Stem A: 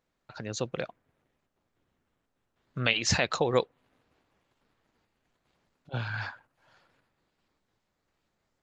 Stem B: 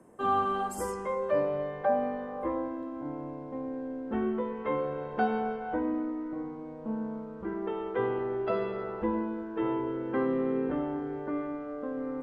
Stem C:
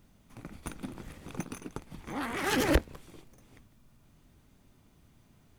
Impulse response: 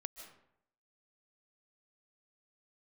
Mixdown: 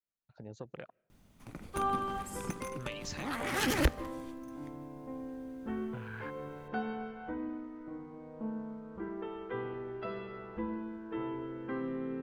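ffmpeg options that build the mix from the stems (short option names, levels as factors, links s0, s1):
-filter_complex "[0:a]afwtdn=0.01,acompressor=threshold=0.0251:ratio=5,volume=0.398,asplit=3[s0][s1][s2];[s1]volume=0.0708[s3];[1:a]adynamicequalizer=threshold=0.00708:dfrequency=720:dqfactor=0.86:tfrequency=720:tqfactor=0.86:attack=5:release=100:ratio=0.375:range=2.5:mode=cutabove:tftype=bell,adelay=1550,volume=0.447,asplit=2[s4][s5];[s5]volume=0.708[s6];[2:a]adelay=1100,volume=0.75,asplit=2[s7][s8];[s8]volume=0.335[s9];[s2]apad=whole_len=607563[s10];[s4][s10]sidechaincompress=threshold=0.00251:ratio=8:attack=16:release=206[s11];[3:a]atrim=start_sample=2205[s12];[s3][s6][s9]amix=inputs=3:normalize=0[s13];[s13][s12]afir=irnorm=-1:irlink=0[s14];[s0][s11][s7][s14]amix=inputs=4:normalize=0,adynamicequalizer=threshold=0.00501:dfrequency=490:dqfactor=0.7:tfrequency=490:tqfactor=0.7:attack=5:release=100:ratio=0.375:range=2.5:mode=cutabove:tftype=bell"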